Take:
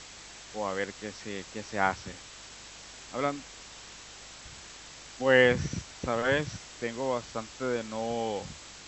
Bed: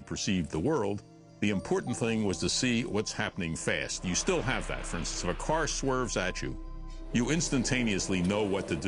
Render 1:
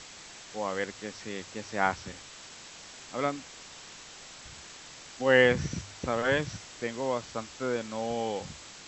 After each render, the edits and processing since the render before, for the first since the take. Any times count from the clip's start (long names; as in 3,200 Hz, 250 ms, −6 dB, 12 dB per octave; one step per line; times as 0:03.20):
hum removal 50 Hz, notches 2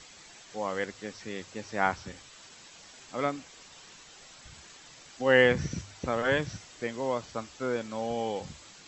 broadband denoise 7 dB, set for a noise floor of −48 dBFS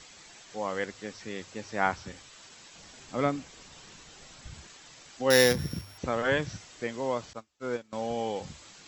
0:02.75–0:04.67: low-shelf EQ 320 Hz +8.5 dB
0:05.30–0:05.98: samples sorted by size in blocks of 8 samples
0:07.33–0:07.93: expander for the loud parts 2.5 to 1, over −46 dBFS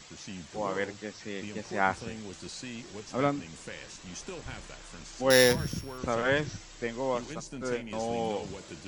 mix in bed −13 dB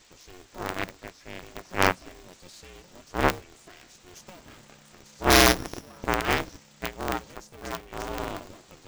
harmonic generator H 4 −6 dB, 5 −26 dB, 7 −19 dB, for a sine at −8 dBFS
ring modulator with a square carrier 180 Hz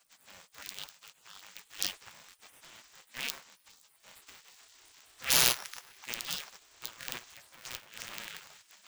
gate on every frequency bin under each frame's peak −15 dB weak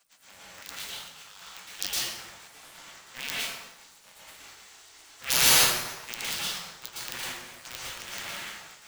dense smooth reverb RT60 1 s, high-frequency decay 0.7×, pre-delay 100 ms, DRR −6.5 dB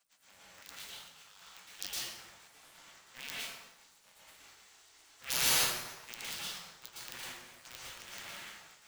level −9 dB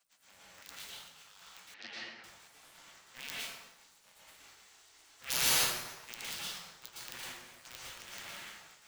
0:01.74–0:02.24: loudspeaker in its box 150–4,000 Hz, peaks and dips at 150 Hz −8 dB, 240 Hz +8 dB, 1,100 Hz −4 dB, 1,900 Hz +6 dB, 3,300 Hz −7 dB